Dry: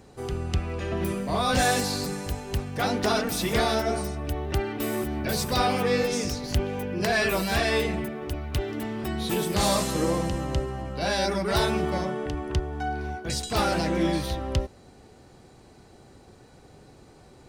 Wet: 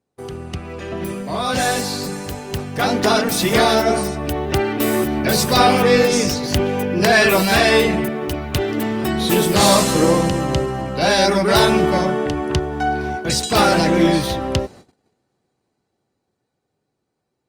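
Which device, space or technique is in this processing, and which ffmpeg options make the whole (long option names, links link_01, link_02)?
video call: -af "highpass=110,dynaudnorm=framelen=430:gausssize=13:maxgain=9dB,agate=range=-26dB:threshold=-42dB:ratio=16:detection=peak,volume=2.5dB" -ar 48000 -c:a libopus -b:a 32k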